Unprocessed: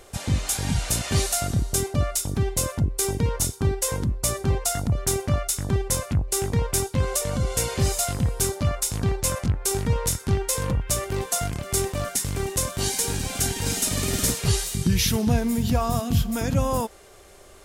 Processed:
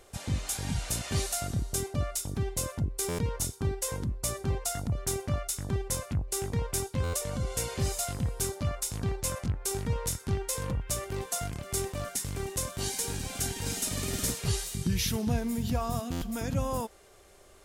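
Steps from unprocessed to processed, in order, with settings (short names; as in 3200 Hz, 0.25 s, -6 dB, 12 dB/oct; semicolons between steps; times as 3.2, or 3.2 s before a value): stuck buffer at 3.08/7.03/16.11, samples 512, times 8; gain -7.5 dB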